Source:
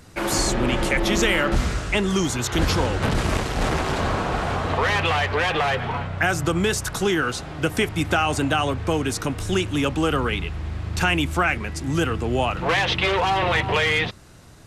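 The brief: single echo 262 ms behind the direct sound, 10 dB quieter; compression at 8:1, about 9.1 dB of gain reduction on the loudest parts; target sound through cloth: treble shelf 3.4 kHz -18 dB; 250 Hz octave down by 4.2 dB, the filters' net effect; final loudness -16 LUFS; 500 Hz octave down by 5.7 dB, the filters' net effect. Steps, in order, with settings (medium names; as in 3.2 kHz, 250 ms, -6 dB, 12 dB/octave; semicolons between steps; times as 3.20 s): peaking EQ 250 Hz -4 dB; peaking EQ 500 Hz -5.5 dB; compression 8:1, threshold -26 dBFS; treble shelf 3.4 kHz -18 dB; delay 262 ms -10 dB; trim +16 dB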